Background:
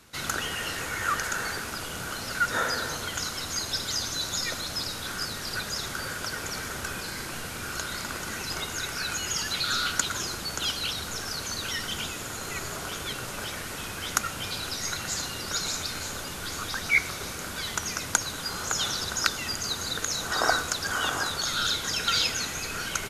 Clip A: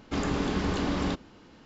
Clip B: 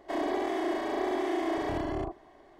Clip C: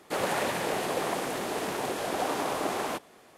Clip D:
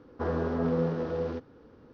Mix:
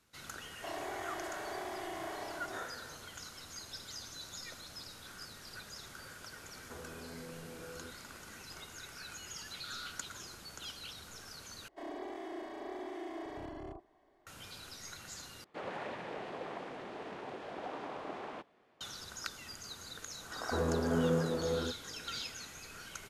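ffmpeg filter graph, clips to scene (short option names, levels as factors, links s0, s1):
-filter_complex "[2:a]asplit=2[s0][s1];[4:a]asplit=2[s2][s3];[0:a]volume=0.15[s4];[s0]highpass=550[s5];[s2]acompressor=threshold=0.0224:ratio=6:attack=3.2:release=140:knee=1:detection=peak[s6];[3:a]lowpass=3200[s7];[s4]asplit=3[s8][s9][s10];[s8]atrim=end=11.684[s11];[s1]atrim=end=2.59,asetpts=PTS-STARTPTS,volume=0.224[s12];[s9]atrim=start=14.266:end=15.444[s13];[s7]atrim=end=3.37,asetpts=PTS-STARTPTS,volume=0.237[s14];[s10]atrim=start=18.806[s15];[s5]atrim=end=2.59,asetpts=PTS-STARTPTS,volume=0.422,afade=t=in:d=0.004:c=hsin,afade=t=out:st=2.586:d=0.004:c=hsin,adelay=540[s16];[s6]atrim=end=1.93,asetpts=PTS-STARTPTS,volume=0.237,afade=t=in:d=0.004:c=hsin,afade=t=out:st=1.926:d=0.004:c=hsin,adelay=6510[s17];[s3]atrim=end=1.93,asetpts=PTS-STARTPTS,volume=0.708,afade=t=in:d=0.004:c=hsin,afade=t=out:st=1.926:d=0.004:c=hsin,adelay=20320[s18];[s11][s12]acrossfade=d=0.004:c1=hsin:c2=hsin[s19];[s19][s13]acrossfade=d=0.004:c1=hsin:c2=hsin[s20];[s20][s14]acrossfade=d=0.004:c1=hsin:c2=hsin[s21];[s21][s15]acrossfade=d=0.004:c1=hsin:c2=hsin[s22];[s22][s16][s17][s18]amix=inputs=4:normalize=0"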